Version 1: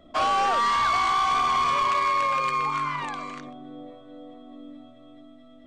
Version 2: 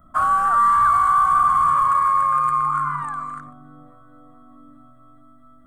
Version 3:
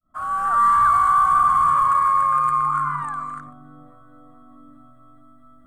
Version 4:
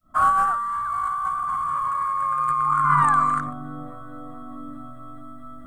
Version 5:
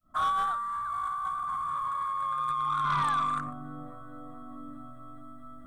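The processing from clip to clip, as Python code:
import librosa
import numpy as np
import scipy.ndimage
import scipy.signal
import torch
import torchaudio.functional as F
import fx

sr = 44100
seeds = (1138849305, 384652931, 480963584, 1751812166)

y1 = fx.curve_eq(x, sr, hz=(160.0, 420.0, 910.0, 1300.0, 2400.0, 5700.0, 9300.0), db=(0, -20, -8, 7, -23, -23, 5))
y1 = y1 * librosa.db_to_amplitude(5.5)
y2 = fx.fade_in_head(y1, sr, length_s=0.65)
y3 = fx.over_compress(y2, sr, threshold_db=-26.0, ratio=-1.0)
y3 = y3 * librosa.db_to_amplitude(3.5)
y4 = 10.0 ** (-15.5 / 20.0) * np.tanh(y3 / 10.0 ** (-15.5 / 20.0))
y4 = y4 * librosa.db_to_amplitude(-6.5)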